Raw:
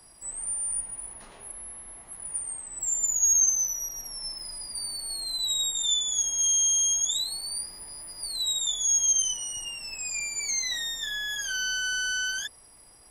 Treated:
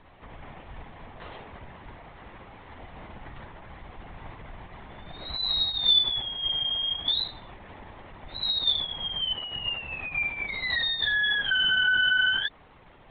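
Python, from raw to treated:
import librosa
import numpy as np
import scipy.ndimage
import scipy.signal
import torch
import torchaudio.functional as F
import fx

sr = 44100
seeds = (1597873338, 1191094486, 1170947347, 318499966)

y = fx.lpc_vocoder(x, sr, seeds[0], excitation='whisper', order=16)
y = y * 10.0 ** (7.5 / 20.0)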